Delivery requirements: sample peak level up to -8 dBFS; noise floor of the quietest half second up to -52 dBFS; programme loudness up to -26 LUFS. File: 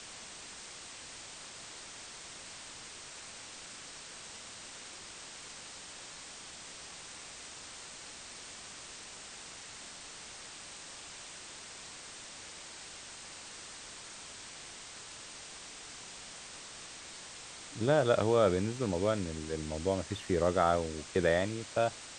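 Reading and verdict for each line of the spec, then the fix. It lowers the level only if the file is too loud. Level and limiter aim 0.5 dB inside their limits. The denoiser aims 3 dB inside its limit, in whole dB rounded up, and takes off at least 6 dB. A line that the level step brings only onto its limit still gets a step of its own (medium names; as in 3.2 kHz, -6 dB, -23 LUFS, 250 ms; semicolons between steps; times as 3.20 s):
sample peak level -13.0 dBFS: pass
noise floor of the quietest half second -48 dBFS: fail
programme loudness -37.5 LUFS: pass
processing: noise reduction 7 dB, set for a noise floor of -48 dBFS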